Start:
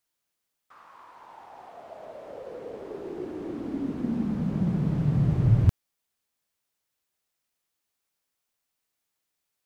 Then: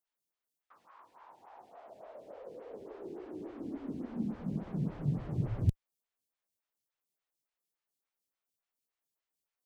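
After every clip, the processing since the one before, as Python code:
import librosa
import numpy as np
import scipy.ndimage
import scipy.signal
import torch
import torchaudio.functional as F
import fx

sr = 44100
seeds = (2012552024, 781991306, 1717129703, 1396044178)

y = fx.stagger_phaser(x, sr, hz=3.5)
y = y * librosa.db_to_amplitude(-6.0)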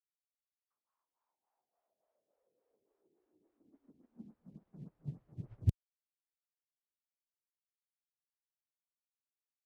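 y = fx.upward_expand(x, sr, threshold_db=-44.0, expansion=2.5)
y = y * librosa.db_to_amplitude(-1.0)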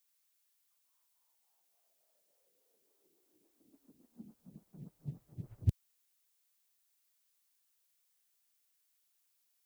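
y = fx.dmg_noise_colour(x, sr, seeds[0], colour='blue', level_db=-77.0)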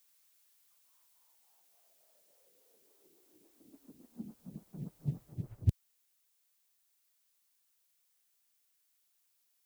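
y = fx.rider(x, sr, range_db=3, speed_s=0.5)
y = y * librosa.db_to_amplitude(4.5)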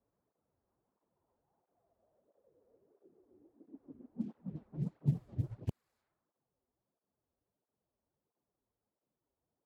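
y = scipy.signal.medfilt(x, 15)
y = fx.env_lowpass(y, sr, base_hz=590.0, full_db=-36.5)
y = fx.flanger_cancel(y, sr, hz=1.5, depth_ms=6.9)
y = y * librosa.db_to_amplitude(7.0)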